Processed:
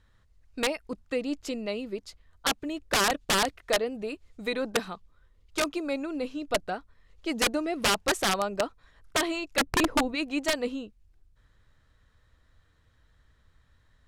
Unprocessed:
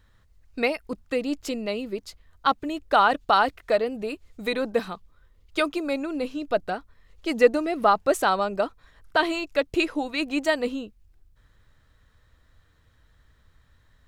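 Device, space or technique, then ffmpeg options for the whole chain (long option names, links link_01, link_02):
overflowing digital effects unit: -filter_complex "[0:a]asplit=3[link_01][link_02][link_03];[link_01]afade=type=out:start_time=9.57:duration=0.02[link_04];[link_02]tiltshelf=frequency=970:gain=9.5,afade=type=in:start_time=9.57:duration=0.02,afade=type=out:start_time=10.14:duration=0.02[link_05];[link_03]afade=type=in:start_time=10.14:duration=0.02[link_06];[link_04][link_05][link_06]amix=inputs=3:normalize=0,aeval=exprs='(mod(4.73*val(0)+1,2)-1)/4.73':channel_layout=same,lowpass=11000,volume=-3.5dB"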